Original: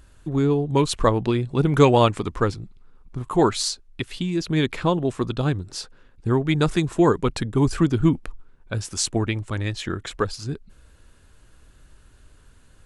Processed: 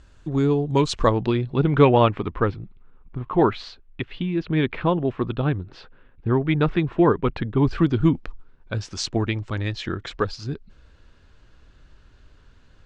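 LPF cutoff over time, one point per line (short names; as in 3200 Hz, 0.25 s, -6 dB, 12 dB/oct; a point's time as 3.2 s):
LPF 24 dB/oct
0.89 s 7000 Hz
1.89 s 3100 Hz
7.38 s 3100 Hz
8.12 s 5500 Hz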